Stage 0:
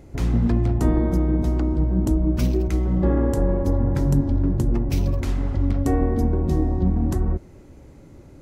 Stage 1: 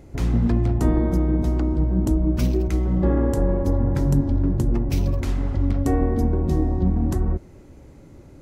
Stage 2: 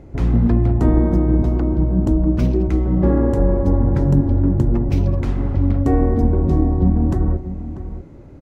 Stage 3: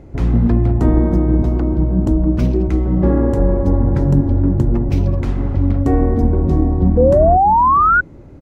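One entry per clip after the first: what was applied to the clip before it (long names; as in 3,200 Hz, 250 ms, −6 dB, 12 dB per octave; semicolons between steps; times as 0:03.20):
no processing that can be heard
low-pass filter 1,600 Hz 6 dB per octave; slap from a distant wall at 110 metres, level −12 dB; level +4.5 dB
sound drawn into the spectrogram rise, 0:06.97–0:08.01, 480–1,500 Hz −13 dBFS; level +1.5 dB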